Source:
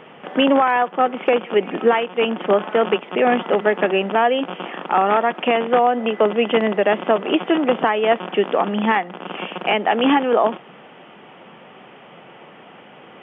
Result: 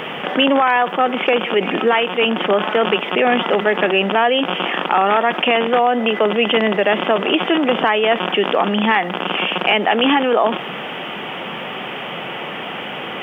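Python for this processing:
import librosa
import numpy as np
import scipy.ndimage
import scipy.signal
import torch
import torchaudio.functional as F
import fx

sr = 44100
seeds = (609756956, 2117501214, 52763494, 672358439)

y = fx.high_shelf(x, sr, hz=2400.0, db=11.5)
y = fx.quant_dither(y, sr, seeds[0], bits=12, dither='none')
y = fx.env_flatten(y, sr, amount_pct=50)
y = y * 10.0 ** (-2.0 / 20.0)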